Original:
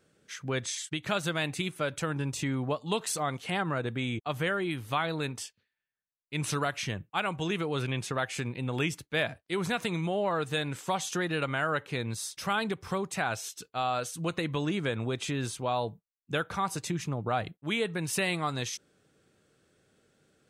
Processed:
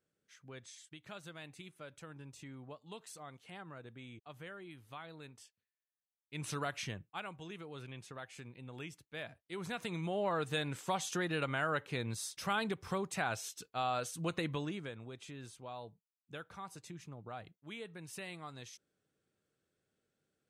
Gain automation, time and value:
5.38 s -19 dB
6.8 s -6.5 dB
7.43 s -16.5 dB
9.08 s -16.5 dB
10.27 s -5 dB
14.48 s -5 dB
15 s -16.5 dB

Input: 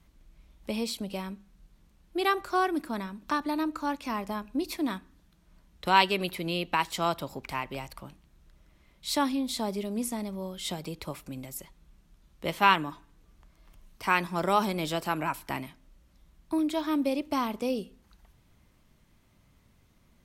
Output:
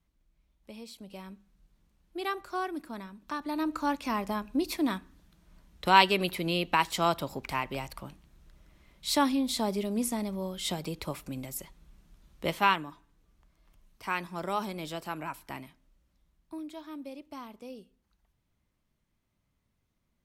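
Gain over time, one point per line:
0.86 s -14 dB
1.32 s -7 dB
3.34 s -7 dB
3.75 s +1.5 dB
12.45 s +1.5 dB
12.86 s -7 dB
15.62 s -7 dB
16.9 s -14.5 dB

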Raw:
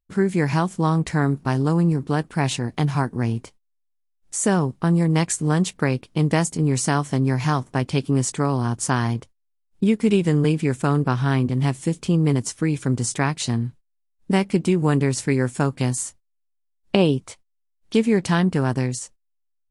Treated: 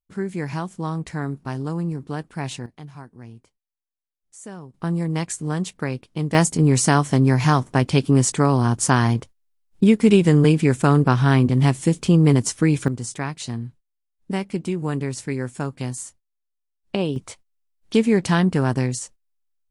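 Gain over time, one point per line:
-7 dB
from 2.66 s -18 dB
from 4.74 s -5 dB
from 6.35 s +4 dB
from 12.88 s -6 dB
from 17.16 s +1 dB

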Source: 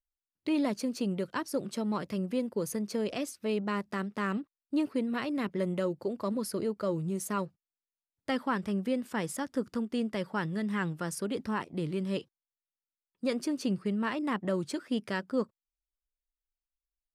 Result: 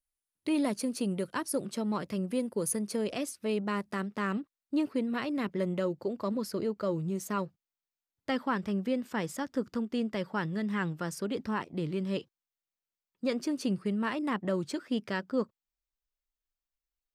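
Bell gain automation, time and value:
bell 10000 Hz 0.35 oct
+12.5 dB
from 1.65 s +1.5 dB
from 2.3 s +12.5 dB
from 2.96 s +5 dB
from 4.01 s -3 dB
from 5.64 s -9.5 dB
from 13.47 s +2.5 dB
from 14.29 s -6 dB
from 15.04 s -12.5 dB

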